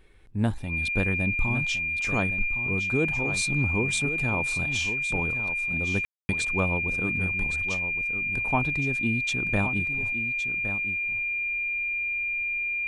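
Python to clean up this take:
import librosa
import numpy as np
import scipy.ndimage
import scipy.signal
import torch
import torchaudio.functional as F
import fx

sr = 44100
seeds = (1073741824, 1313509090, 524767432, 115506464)

y = fx.notch(x, sr, hz=2400.0, q=30.0)
y = fx.fix_ambience(y, sr, seeds[0], print_start_s=0.0, print_end_s=0.5, start_s=6.05, end_s=6.29)
y = fx.fix_echo_inverse(y, sr, delay_ms=1114, level_db=-10.5)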